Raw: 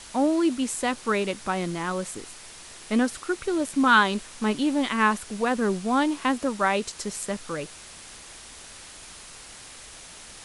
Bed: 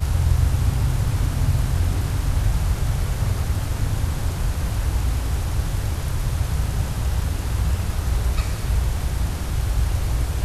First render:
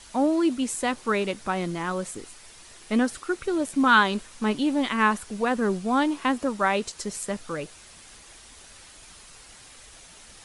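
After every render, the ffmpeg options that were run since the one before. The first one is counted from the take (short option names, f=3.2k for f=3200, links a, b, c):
-af "afftdn=nr=6:nf=-45"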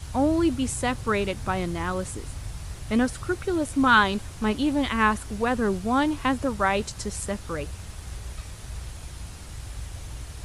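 -filter_complex "[1:a]volume=-15.5dB[a];[0:a][a]amix=inputs=2:normalize=0"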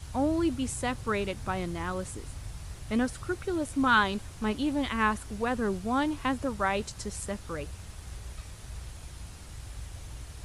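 -af "volume=-5dB"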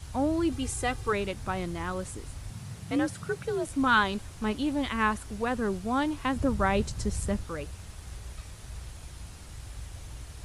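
-filter_complex "[0:a]asettb=1/sr,asplit=3[a][b][c];[a]atrim=end=0.524[d];[b]atrim=start=0.52:end=1.13,asetpts=PTS-STARTPTS,afade=t=in:d=0.004:c=qsin,afade=t=out:st=0.606:d=0.004:c=qsin,aecho=1:1:2.5:0.69,atrim=end_sample=26901[e];[c]atrim=start=1.126[f];[d][e]acrossfade=d=0.004:c1=hsin:c2=qsin[g];[g][f]acrossfade=d=0.004:c1=qsin:c2=hsin,asettb=1/sr,asplit=3[h][i][j];[h]atrim=end=2.504[k];[i]atrim=start=2.5:end=3.67,asetpts=PTS-STARTPTS,afade=t=in:d=0.004:c=qsin,afade=t=out:st=1.166:d=0.004:c=qsin,afreqshift=55[l];[j]atrim=start=3.666[m];[k][l]acrossfade=d=0.004:c1=hsin:c2=qsin[n];[n][m]acrossfade=d=0.004:c1=qsin:c2=hsin,asettb=1/sr,asplit=3[o][p][q];[o]atrim=end=6.364[r];[p]atrim=start=6.36:end=7.44,asetpts=PTS-STARTPTS,afade=t=in:d=0.004:c=qsin,afade=t=out:st=1.076:d=0.004:c=qsin,lowshelf=f=330:g=10[s];[q]atrim=start=7.436[t];[r][s]acrossfade=d=0.004:c1=hsin:c2=qsin[u];[u][t]acrossfade=d=0.004:c1=qsin:c2=hsin"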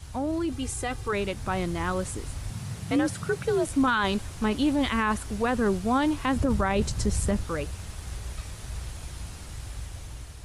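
-af "alimiter=limit=-21.5dB:level=0:latency=1:release=10,dynaudnorm=f=540:g=5:m=5.5dB"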